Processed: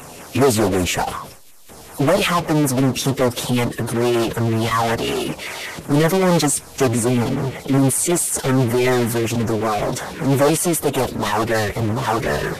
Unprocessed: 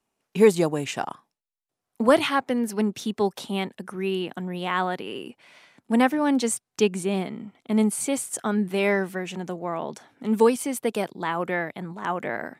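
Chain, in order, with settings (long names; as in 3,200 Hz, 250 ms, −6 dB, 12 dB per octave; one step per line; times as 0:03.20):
power curve on the samples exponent 0.35
auto-filter notch saw down 5.3 Hz 940–5,400 Hz
phase-vocoder pitch shift with formants kept −8 semitones
level −2.5 dB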